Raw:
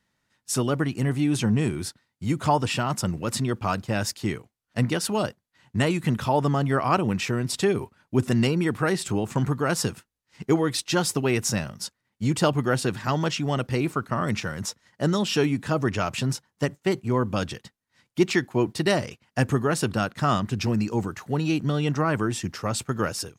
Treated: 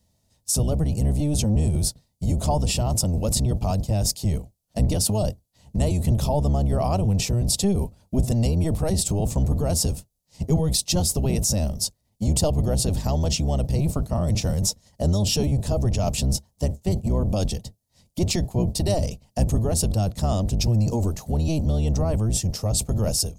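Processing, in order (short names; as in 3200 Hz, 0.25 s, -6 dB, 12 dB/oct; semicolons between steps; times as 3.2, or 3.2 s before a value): octaver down 1 oct, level +4 dB; EQ curve 200 Hz 0 dB, 330 Hz -8 dB, 650 Hz +3 dB, 1500 Hz -21 dB, 4600 Hz 0 dB, 11000 Hz +5 dB; in parallel at -2 dB: negative-ratio compressor -27 dBFS, ratio -0.5; on the sum: gain -2 dB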